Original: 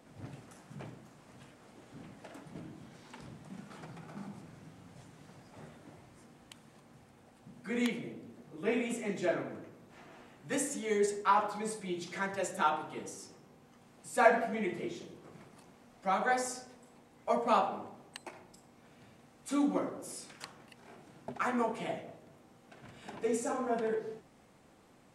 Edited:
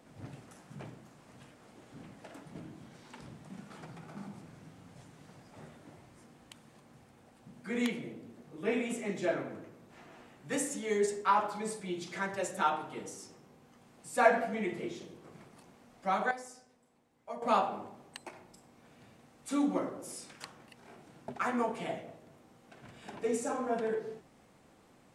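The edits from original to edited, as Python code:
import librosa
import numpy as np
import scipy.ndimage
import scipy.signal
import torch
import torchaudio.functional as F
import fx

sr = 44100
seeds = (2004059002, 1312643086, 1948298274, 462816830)

y = fx.edit(x, sr, fx.clip_gain(start_s=16.31, length_s=1.11, db=-11.5), tone=tone)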